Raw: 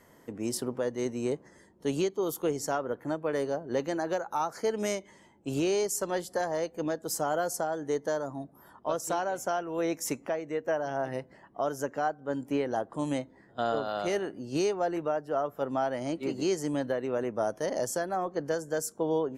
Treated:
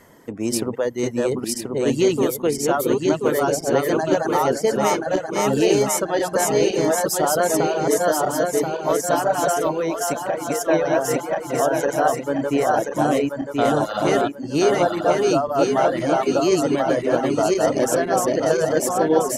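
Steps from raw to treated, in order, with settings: regenerating reverse delay 0.516 s, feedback 71%, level -1 dB; reverb removal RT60 0.68 s; 9.72–10.61 compressor 4:1, threshold -29 dBFS, peak gain reduction 5.5 dB; gain +9 dB

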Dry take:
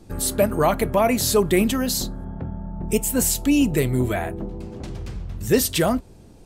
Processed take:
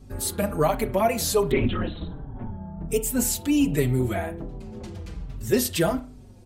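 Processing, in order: wow and flutter 31 cents; hum 50 Hz, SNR 22 dB; on a send at -12.5 dB: reverb, pre-delay 32 ms; 1.51–2.51 on the sum: LPC vocoder at 8 kHz whisper; endless flanger 4.8 ms -1.3 Hz; gain -1 dB

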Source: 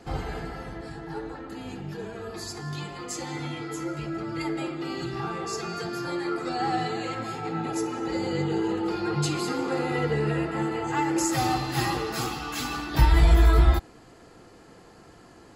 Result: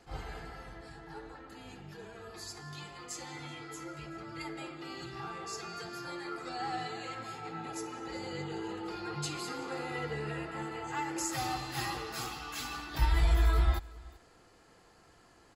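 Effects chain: bell 230 Hz -7.5 dB 2.8 oct; echo 0.38 s -23 dB; attack slew limiter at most 280 dB/s; gain -6.5 dB

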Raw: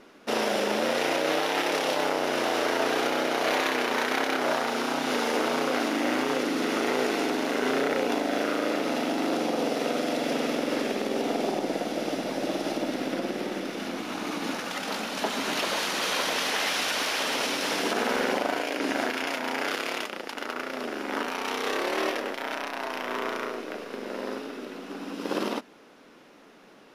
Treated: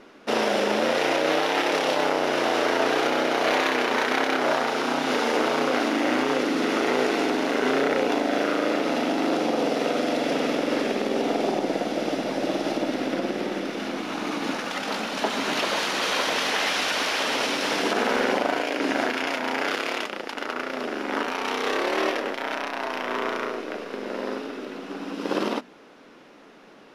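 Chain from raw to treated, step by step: high shelf 9000 Hz -11 dB; notches 60/120/180/240 Hz; gain +3.5 dB

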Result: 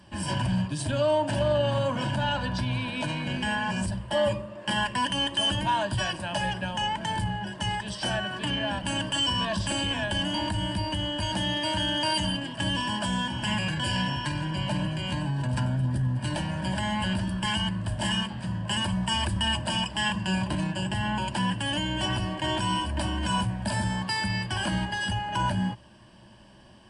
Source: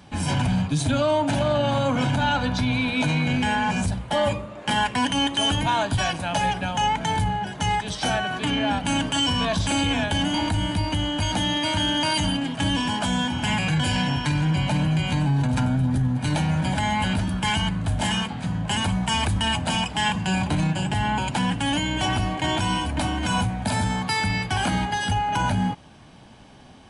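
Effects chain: ripple EQ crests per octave 1.3, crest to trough 10 dB; gain -6 dB

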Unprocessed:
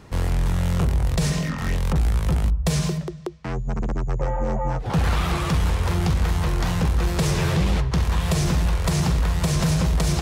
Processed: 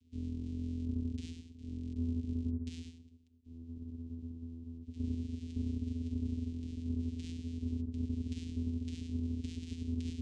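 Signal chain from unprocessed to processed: inverse Chebyshev band-stop 230–2900 Hz, stop band 70 dB; vocoder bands 4, square 83.1 Hz; gain +10 dB

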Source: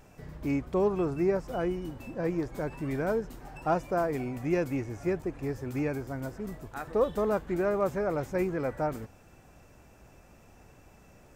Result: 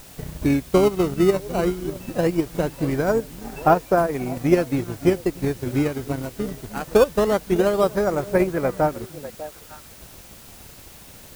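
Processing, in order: in parallel at -7 dB: decimation with a swept rate 15×, swing 160% 0.2 Hz; on the sum: delay with a stepping band-pass 0.298 s, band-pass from 190 Hz, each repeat 1.4 oct, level -8.5 dB; transient shaper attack +7 dB, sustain -8 dB; added noise white -50 dBFS; gain +4 dB

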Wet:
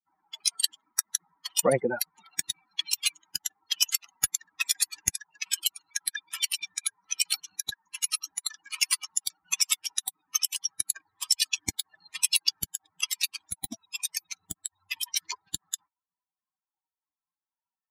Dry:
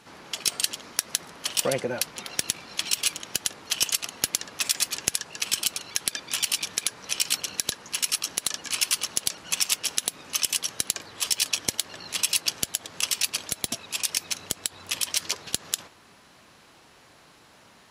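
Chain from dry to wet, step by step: per-bin expansion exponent 3; gain +7 dB

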